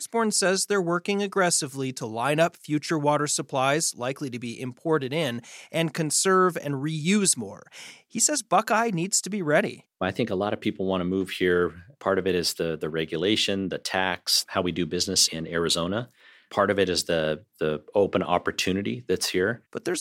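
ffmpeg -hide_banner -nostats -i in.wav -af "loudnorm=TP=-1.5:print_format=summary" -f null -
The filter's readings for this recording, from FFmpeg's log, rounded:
Input Integrated:    -25.1 LUFS
Input True Peak:      -6.3 dBTP
Input LRA:             2.0 LU
Input Threshold:     -35.3 LUFS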